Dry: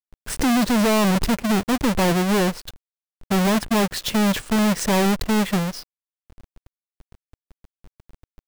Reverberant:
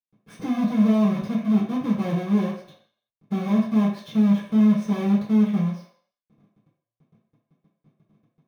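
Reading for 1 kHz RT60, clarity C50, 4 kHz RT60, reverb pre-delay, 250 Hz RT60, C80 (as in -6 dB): 0.60 s, 4.5 dB, 0.55 s, 3 ms, 0.40 s, 8.0 dB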